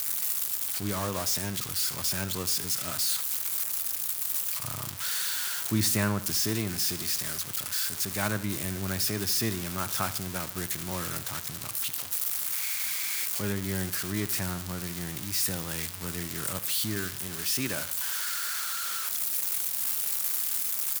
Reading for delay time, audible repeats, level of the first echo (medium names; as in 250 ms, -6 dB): 74 ms, 2, -16.0 dB